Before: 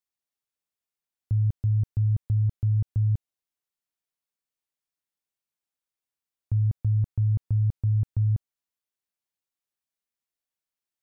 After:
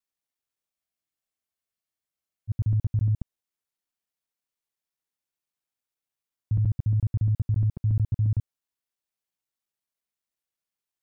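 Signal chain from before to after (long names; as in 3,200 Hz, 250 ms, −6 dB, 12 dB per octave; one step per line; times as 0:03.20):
reversed piece by piece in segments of 70 ms
frozen spectrum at 0:00.75, 1.75 s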